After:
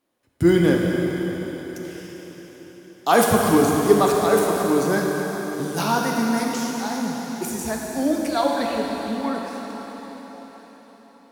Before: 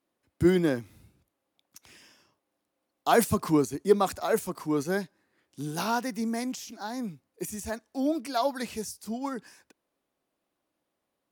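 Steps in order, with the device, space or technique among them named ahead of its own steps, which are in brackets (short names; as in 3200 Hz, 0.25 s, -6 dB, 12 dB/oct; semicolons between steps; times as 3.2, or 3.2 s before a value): 8.28–9.35 elliptic low-pass 4400 Hz; cathedral (reverb RT60 4.9 s, pre-delay 7 ms, DRR -1.5 dB); gain +5 dB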